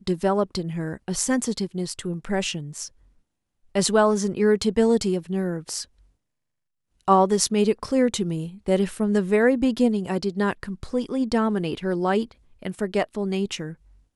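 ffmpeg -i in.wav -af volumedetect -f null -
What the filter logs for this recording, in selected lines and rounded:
mean_volume: -24.0 dB
max_volume: -2.8 dB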